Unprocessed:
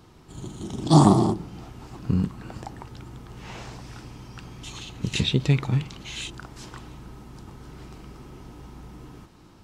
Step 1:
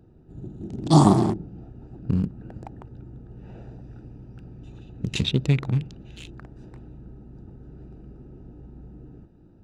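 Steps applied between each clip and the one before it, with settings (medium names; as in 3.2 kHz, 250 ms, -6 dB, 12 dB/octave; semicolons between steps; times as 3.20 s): local Wiener filter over 41 samples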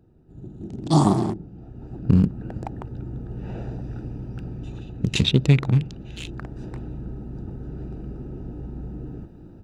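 level rider gain up to 13 dB; trim -3.5 dB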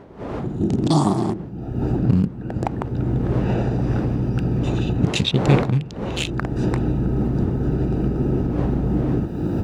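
recorder AGC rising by 28 dB/s; wind noise 430 Hz -31 dBFS; high-pass 89 Hz 6 dB/octave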